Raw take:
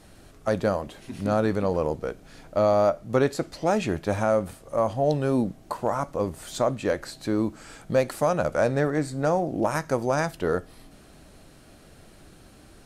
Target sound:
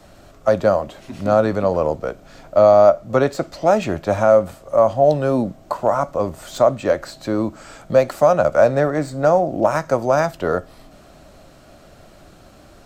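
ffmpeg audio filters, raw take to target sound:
-filter_complex "[0:a]superequalizer=8b=2.24:9b=1.41:10b=1.58:16b=0.447,acrossover=split=160|690|4700[s0][s1][s2][s3];[s3]aeval=exprs='clip(val(0),-1,0.0075)':c=same[s4];[s0][s1][s2][s4]amix=inputs=4:normalize=0,volume=1.5"

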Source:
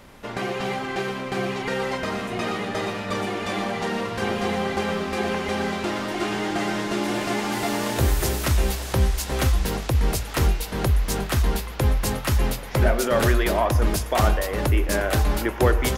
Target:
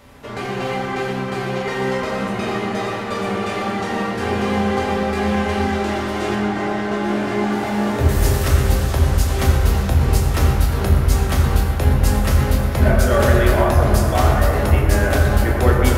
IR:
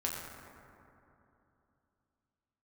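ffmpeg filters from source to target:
-filter_complex "[0:a]asettb=1/sr,asplit=3[s0][s1][s2];[s0]atrim=end=6.354[s3];[s1]atrim=start=6.35:end=8.09,asetpts=PTS-STARTPTS,afade=t=in:d=0.004:c=qsin,afade=t=out:st=1.736:d=0.004:c=qsin,highshelf=f=4000:g=-11[s4];[s2]atrim=start=8.086[s5];[s3][s4]acrossfade=d=0.004:c1=hsin:c2=qsin[s6];[s6][s5]acrossfade=d=0.004:c1=qsin:c2=hsin[s7];[1:a]atrim=start_sample=2205[s8];[s7][s8]afir=irnorm=-1:irlink=0"

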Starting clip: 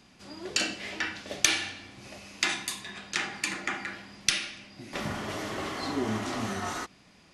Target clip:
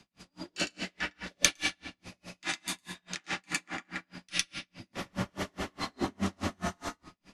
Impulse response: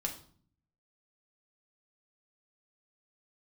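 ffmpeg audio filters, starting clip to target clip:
-filter_complex "[0:a]afreqshift=-20,asplit=2[s0][s1];[1:a]atrim=start_sample=2205,adelay=108[s2];[s1][s2]afir=irnorm=-1:irlink=0,volume=0.891[s3];[s0][s3]amix=inputs=2:normalize=0,aeval=exprs='val(0)*pow(10,-40*(0.5-0.5*cos(2*PI*4.8*n/s))/20)':c=same"

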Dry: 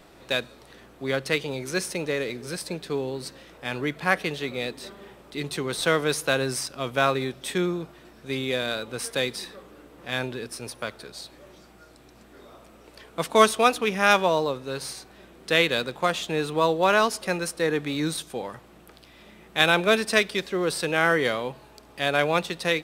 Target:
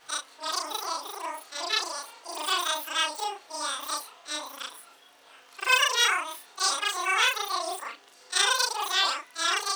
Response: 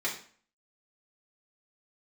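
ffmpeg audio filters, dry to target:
-af "afftfilt=real='re':imag='-im':win_size=8192:overlap=0.75,lowpass=1700,asetrate=103194,aresample=44100,aemphasis=mode=production:type=riaa"

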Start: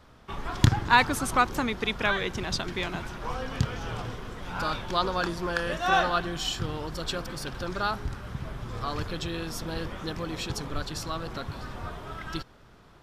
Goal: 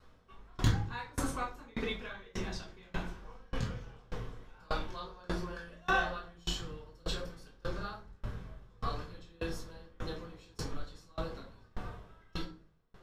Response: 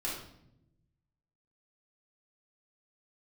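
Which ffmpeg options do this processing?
-filter_complex "[1:a]atrim=start_sample=2205,asetrate=66150,aresample=44100[s0];[0:a][s0]afir=irnorm=-1:irlink=0,aeval=exprs='val(0)*pow(10,-29*if(lt(mod(1.7*n/s,1),2*abs(1.7)/1000),1-mod(1.7*n/s,1)/(2*abs(1.7)/1000),(mod(1.7*n/s,1)-2*abs(1.7)/1000)/(1-2*abs(1.7)/1000))/20)':c=same,volume=0.708"

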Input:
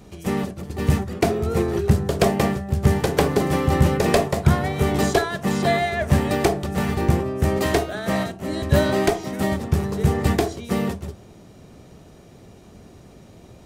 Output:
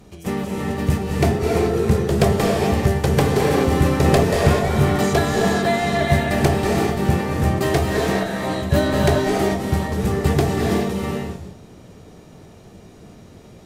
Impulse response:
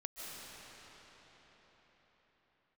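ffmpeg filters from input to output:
-filter_complex "[1:a]atrim=start_sample=2205,afade=t=out:st=0.36:d=0.01,atrim=end_sample=16317,asetrate=30870,aresample=44100[s0];[0:a][s0]afir=irnorm=-1:irlink=0,volume=1.41"

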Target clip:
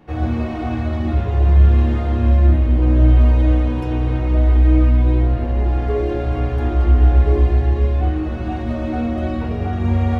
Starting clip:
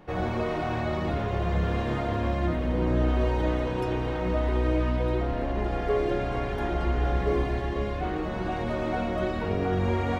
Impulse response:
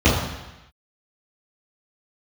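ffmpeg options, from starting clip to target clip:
-filter_complex "[0:a]asplit=2[s0][s1];[1:a]atrim=start_sample=2205,atrim=end_sample=6615[s2];[s1][s2]afir=irnorm=-1:irlink=0,volume=0.0531[s3];[s0][s3]amix=inputs=2:normalize=0"

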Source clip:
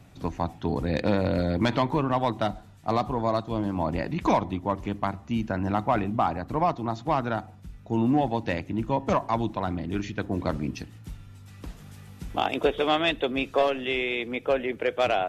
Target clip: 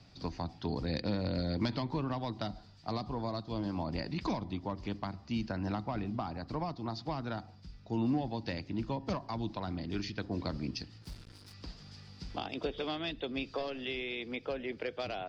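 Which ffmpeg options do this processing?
-filter_complex "[0:a]lowpass=f=4800:t=q:w=9.2,asplit=3[s0][s1][s2];[s0]afade=t=out:st=11.01:d=0.02[s3];[s1]acrusher=bits=6:mix=0:aa=0.5,afade=t=in:st=11.01:d=0.02,afade=t=out:st=11.52:d=0.02[s4];[s2]afade=t=in:st=11.52:d=0.02[s5];[s3][s4][s5]amix=inputs=3:normalize=0,acrossover=split=310[s6][s7];[s7]acompressor=threshold=0.0355:ratio=6[s8];[s6][s8]amix=inputs=2:normalize=0,volume=0.447"

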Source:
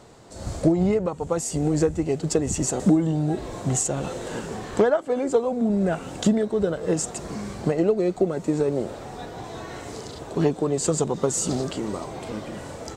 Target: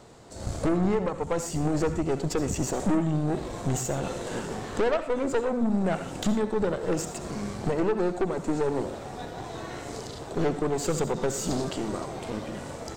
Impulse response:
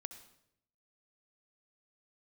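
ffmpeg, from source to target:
-filter_complex "[0:a]acrossover=split=5700[s0][s1];[s1]acompressor=threshold=0.0141:ratio=4:attack=1:release=60[s2];[s0][s2]amix=inputs=2:normalize=0,aeval=exprs='(tanh(14.1*val(0)+0.65)-tanh(0.65))/14.1':c=same[s3];[1:a]atrim=start_sample=2205,atrim=end_sample=6174[s4];[s3][s4]afir=irnorm=-1:irlink=0,volume=2"

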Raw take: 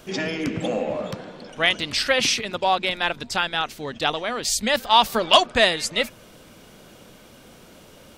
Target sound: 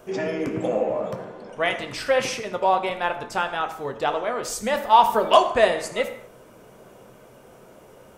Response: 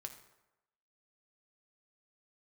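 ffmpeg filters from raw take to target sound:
-filter_complex "[0:a]equalizer=f=500:t=o:w=1:g=7,equalizer=f=1000:t=o:w=1:g=5,equalizer=f=4000:t=o:w=1:g=-9[s0];[1:a]atrim=start_sample=2205,afade=t=out:st=0.3:d=0.01,atrim=end_sample=13671[s1];[s0][s1]afir=irnorm=-1:irlink=0"

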